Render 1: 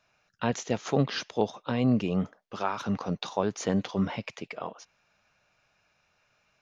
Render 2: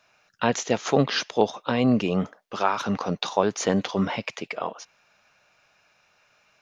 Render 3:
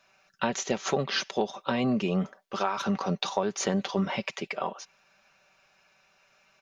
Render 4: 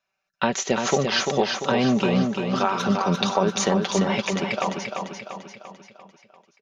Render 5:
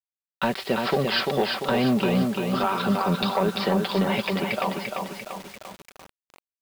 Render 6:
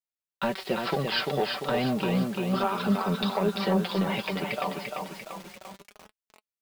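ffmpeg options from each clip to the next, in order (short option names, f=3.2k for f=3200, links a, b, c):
-af "lowshelf=f=190:g=-10,volume=7.5dB"
-af "aecho=1:1:5.2:0.53,acompressor=threshold=-21dB:ratio=6,volume=-2dB"
-af "agate=range=-21dB:threshold=-56dB:ratio=16:detection=peak,aecho=1:1:344|688|1032|1376|1720|2064:0.562|0.287|0.146|0.0746|0.038|0.0194,volume=5.5dB"
-af "aresample=11025,asoftclip=type=tanh:threshold=-13dB,aresample=44100,acrusher=bits=6:mix=0:aa=0.000001"
-af "flanger=delay=4.6:depth=2.2:regen=48:speed=0.32:shape=sinusoidal"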